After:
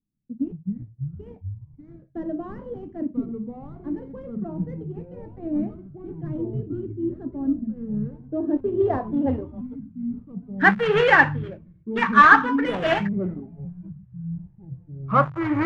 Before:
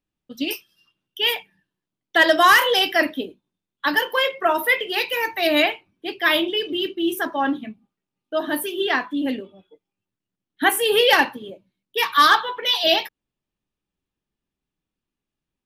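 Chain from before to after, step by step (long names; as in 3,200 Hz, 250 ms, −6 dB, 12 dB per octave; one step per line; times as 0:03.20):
gap after every zero crossing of 0.11 ms
low-pass filter sweep 220 Hz → 1,700 Hz, 0:07.89–0:10.05
delay with pitch and tempo change per echo 96 ms, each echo −6 semitones, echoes 3
level −1 dB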